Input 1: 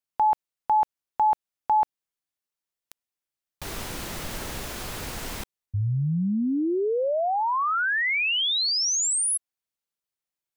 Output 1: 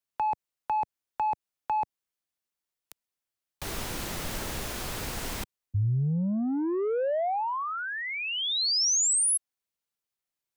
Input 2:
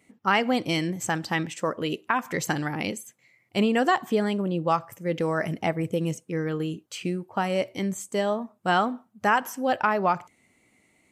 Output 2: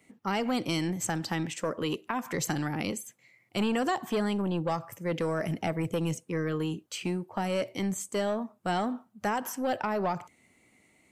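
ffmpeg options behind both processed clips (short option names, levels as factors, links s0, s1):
-filter_complex "[0:a]acrossover=split=120|770|4100[s0][s1][s2][s3];[s1]asoftclip=type=tanh:threshold=0.0501[s4];[s2]acompressor=threshold=0.0141:ratio=4:attack=6.5:release=145:detection=peak[s5];[s0][s4][s5][s3]amix=inputs=4:normalize=0"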